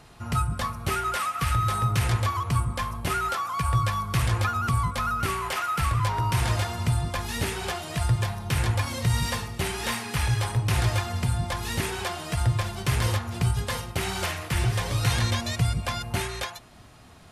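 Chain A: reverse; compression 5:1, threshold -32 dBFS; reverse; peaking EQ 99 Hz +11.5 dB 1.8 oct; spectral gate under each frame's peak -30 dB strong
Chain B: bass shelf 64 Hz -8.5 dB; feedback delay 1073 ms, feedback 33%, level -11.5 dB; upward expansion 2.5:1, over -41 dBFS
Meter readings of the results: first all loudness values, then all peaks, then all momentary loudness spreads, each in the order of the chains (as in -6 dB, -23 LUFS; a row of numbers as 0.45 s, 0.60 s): -28.0 LUFS, -35.5 LUFS; -14.5 dBFS, -14.5 dBFS; 7 LU, 10 LU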